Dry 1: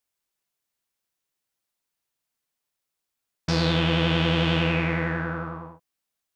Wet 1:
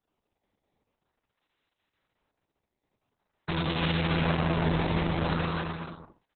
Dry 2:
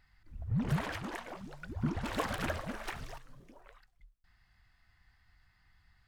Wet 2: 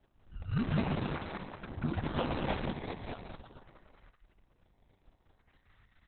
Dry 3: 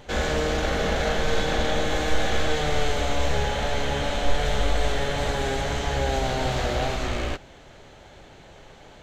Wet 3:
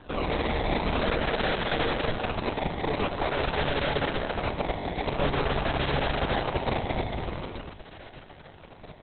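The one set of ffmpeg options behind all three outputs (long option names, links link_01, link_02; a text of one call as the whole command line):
ffmpeg -i in.wav -filter_complex "[0:a]acrossover=split=190[link_01][link_02];[link_01]acompressor=threshold=-25dB:ratio=8[link_03];[link_03][link_02]amix=inputs=2:normalize=0,bandreject=frequency=60:width_type=h:width=6,bandreject=frequency=120:width_type=h:width=6,bandreject=frequency=180:width_type=h:width=6,acrusher=samples=18:mix=1:aa=0.000001:lfo=1:lforange=28.8:lforate=0.47,volume=26.5dB,asoftclip=hard,volume=-26.5dB,asplit=2[link_04][link_05];[link_05]adelay=21,volume=-11.5dB[link_06];[link_04][link_06]amix=inputs=2:normalize=0,aecho=1:1:190|304|372.4|413.4|438.1:0.631|0.398|0.251|0.158|0.1,aresample=11025,aresample=44100,volume=1.5dB" -ar 48000 -c:a libopus -b:a 6k out.opus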